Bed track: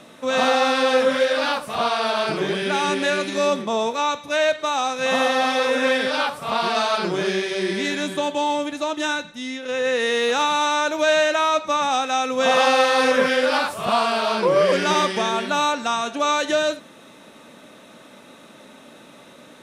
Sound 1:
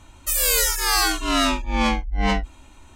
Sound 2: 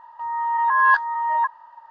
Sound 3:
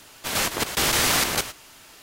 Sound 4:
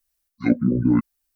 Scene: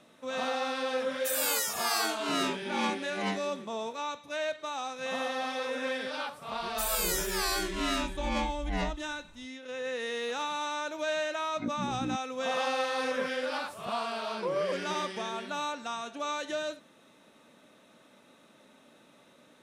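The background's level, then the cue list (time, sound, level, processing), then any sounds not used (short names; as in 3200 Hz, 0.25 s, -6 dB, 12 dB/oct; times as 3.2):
bed track -13.5 dB
0.98 add 1 -10.5 dB + steep high-pass 160 Hz
6.51 add 1 -11.5 dB + record warp 45 rpm, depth 100 cents
11.16 add 4 -16.5 dB
not used: 2, 3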